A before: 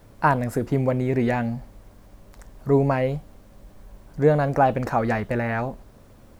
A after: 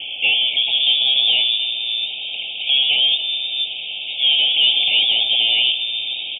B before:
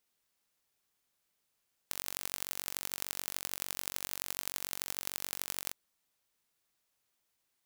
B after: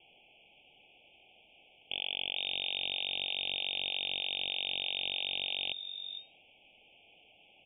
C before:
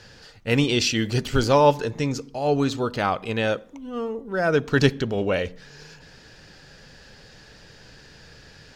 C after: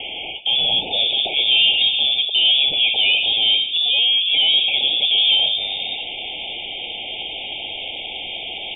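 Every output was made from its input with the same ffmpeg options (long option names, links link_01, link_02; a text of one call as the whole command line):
ffmpeg -i in.wav -filter_complex "[0:a]aresample=16000,asoftclip=type=hard:threshold=-21dB,aresample=44100,asplit=2[link_01][link_02];[link_02]highpass=frequency=720:poles=1,volume=33dB,asoftclip=type=tanh:threshold=-16.5dB[link_03];[link_01][link_03]amix=inputs=2:normalize=0,lowpass=frequency=2500:poles=1,volume=-6dB,acrossover=split=190[link_04][link_05];[link_04]adelay=450[link_06];[link_06][link_05]amix=inputs=2:normalize=0,lowpass=frequency=3100:width_type=q:width=0.5098,lowpass=frequency=3100:width_type=q:width=0.6013,lowpass=frequency=3100:width_type=q:width=0.9,lowpass=frequency=3100:width_type=q:width=2.563,afreqshift=-3700,asuperstop=centerf=1400:order=20:qfactor=0.95,volume=6.5dB" out.wav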